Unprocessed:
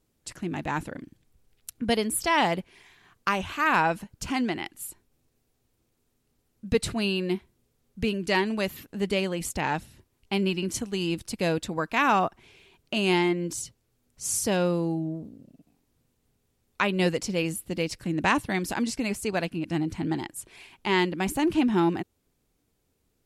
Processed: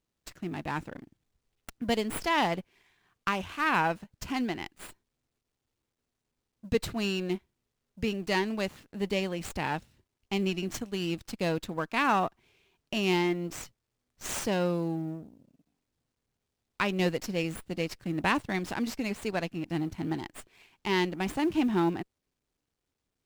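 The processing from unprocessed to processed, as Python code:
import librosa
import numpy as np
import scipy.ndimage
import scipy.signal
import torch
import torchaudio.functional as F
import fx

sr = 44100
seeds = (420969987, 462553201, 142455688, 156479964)

y = fx.law_mismatch(x, sr, coded='A')
y = fx.running_max(y, sr, window=3)
y = y * librosa.db_to_amplitude(-3.0)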